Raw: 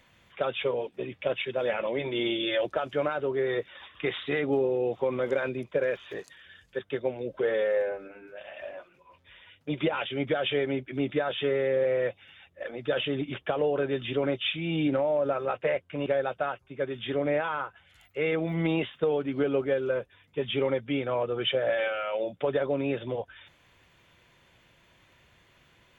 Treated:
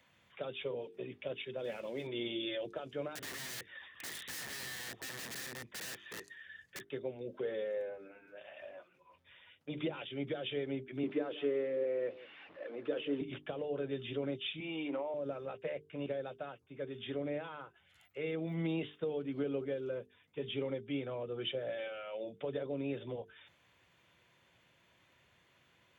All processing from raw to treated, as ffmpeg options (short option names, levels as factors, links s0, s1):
-filter_complex "[0:a]asettb=1/sr,asplit=3[s0][s1][s2];[s0]atrim=end=1.644[s3];[s1]atrim=start=1.64:end=2.07,asetpts=PTS-STARTPTS,afade=t=in:d=0.004:c=qsin,afade=t=out:st=0.426:d=0.004:c=qsin,highpass=42,aeval=exprs='sgn(val(0))*max(abs(val(0))-0.00266,0)':c=same[s4];[s2]atrim=start=2.066[s5];[s3][s4]acrossfade=d=0.004:c1=hsin:c2=qsin[s6];[s6][s5]acrossfade=d=0.004:c1=qsin:c2=hsin,asettb=1/sr,asplit=3[s7][s8][s9];[s7]atrim=end=3.154[s10];[s8]atrim=start=3.15:end=6.89,asetpts=PTS-STARTPTS,afade=t=in:d=0.004:c=qsin,afade=t=out:st=3.736:d=0.004:c=qsin,aeval=exprs='(mod(35.5*val(0)+1,2)-1)/35.5':c=same,equalizer=f=1800:t=o:w=0.28:g=14.5[s11];[s9]atrim=start=6.886[s12];[s10][s11]acrossfade=d=0.004:c1=hsin:c2=qsin[s13];[s13][s12]acrossfade=d=0.004:c1=qsin:c2=hsin,asettb=1/sr,asplit=3[s14][s15][s16];[s14]atrim=end=11.034[s17];[s15]atrim=start=11.03:end=13.21,asetpts=PTS-STARTPTS,afade=t=in:d=0.004:c=qsin,afade=t=out:st=2.176:d=0.004:c=qsin,aeval=exprs='val(0)+0.5*0.00708*sgn(val(0))':c=same,highpass=240,equalizer=f=300:t=q:w=4:g=7,equalizer=f=450:t=q:w=4:g=4,equalizer=f=1100:t=q:w=4:g=5,lowpass=f=2900:w=0.5412,lowpass=f=2900:w=1.3066,aecho=1:1:164:0.112,atrim=end_sample=96138[s18];[s16]atrim=start=13.206[s19];[s17][s18]acrossfade=d=0.004:c1=hsin:c2=qsin[s20];[s20][s19]acrossfade=d=0.004:c1=qsin:c2=hsin,asettb=1/sr,asplit=3[s21][s22][s23];[s21]atrim=end=14.604[s24];[s22]atrim=start=14.6:end=15.14,asetpts=PTS-STARTPTS,afade=t=in:d=0.004:c=qsin,afade=t=out:st=0.536:d=0.004:c=qsin,highpass=470,equalizer=f=590:t=q:w=4:g=-4,equalizer=f=1000:t=q:w=4:g=9,equalizer=f=1600:t=q:w=4:g=-7,lowpass=f=2900:w=0.5412,lowpass=f=2900:w=1.3066,acontrast=35[s25];[s23]atrim=start=15.136[s26];[s24][s25]acrossfade=d=0.004:c1=hsin:c2=qsin[s27];[s27][s26]acrossfade=d=0.004:c1=qsin:c2=hsin,highpass=84,bandreject=f=50:t=h:w=6,bandreject=f=100:t=h:w=6,bandreject=f=150:t=h:w=6,bandreject=f=200:t=h:w=6,bandreject=f=250:t=h:w=6,bandreject=f=300:t=h:w=6,bandreject=f=350:t=h:w=6,bandreject=f=400:t=h:w=6,bandreject=f=450:t=h:w=6,acrossover=split=490|3000[s28][s29][s30];[s29]acompressor=threshold=0.00562:ratio=2.5[s31];[s28][s31][s30]amix=inputs=3:normalize=0,volume=0.447"